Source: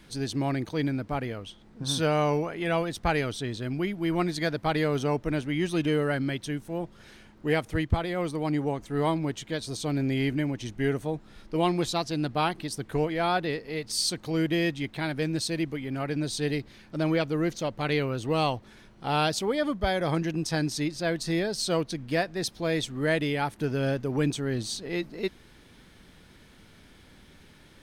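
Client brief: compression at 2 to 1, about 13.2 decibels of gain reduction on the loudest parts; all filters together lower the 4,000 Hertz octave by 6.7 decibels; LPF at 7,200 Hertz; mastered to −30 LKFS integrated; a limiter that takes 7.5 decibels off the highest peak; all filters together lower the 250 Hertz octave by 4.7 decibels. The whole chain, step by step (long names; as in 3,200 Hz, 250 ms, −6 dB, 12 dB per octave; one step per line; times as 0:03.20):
low-pass filter 7,200 Hz
parametric band 250 Hz −7 dB
parametric band 4,000 Hz −8 dB
downward compressor 2 to 1, threshold −44 dBFS
level +12 dB
brickwall limiter −19.5 dBFS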